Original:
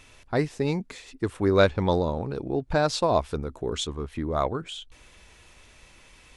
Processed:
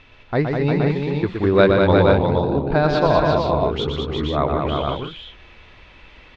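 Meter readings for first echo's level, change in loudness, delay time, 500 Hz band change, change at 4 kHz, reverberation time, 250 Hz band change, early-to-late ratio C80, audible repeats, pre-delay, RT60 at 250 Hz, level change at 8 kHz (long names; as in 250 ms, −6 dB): −5.5 dB, +7.5 dB, 119 ms, +8.0 dB, +5.0 dB, no reverb audible, +8.5 dB, no reverb audible, 5, no reverb audible, no reverb audible, below −10 dB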